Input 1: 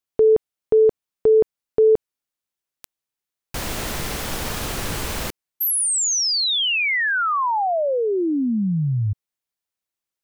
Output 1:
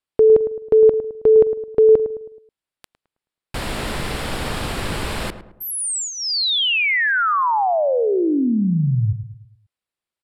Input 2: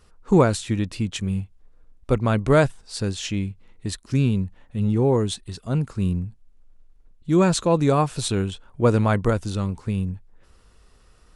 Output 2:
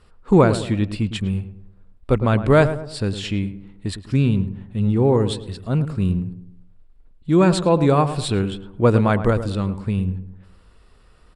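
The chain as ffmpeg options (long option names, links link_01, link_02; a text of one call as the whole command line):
ffmpeg -i in.wav -filter_complex "[0:a]lowpass=8400,equalizer=frequency=6200:width=3.5:gain=-13,asplit=2[link_01][link_02];[link_02]adelay=107,lowpass=frequency=1300:poles=1,volume=-10.5dB,asplit=2[link_03][link_04];[link_04]adelay=107,lowpass=frequency=1300:poles=1,volume=0.44,asplit=2[link_05][link_06];[link_06]adelay=107,lowpass=frequency=1300:poles=1,volume=0.44,asplit=2[link_07][link_08];[link_08]adelay=107,lowpass=frequency=1300:poles=1,volume=0.44,asplit=2[link_09][link_10];[link_10]adelay=107,lowpass=frequency=1300:poles=1,volume=0.44[link_11];[link_03][link_05][link_07][link_09][link_11]amix=inputs=5:normalize=0[link_12];[link_01][link_12]amix=inputs=2:normalize=0,volume=2.5dB" out.wav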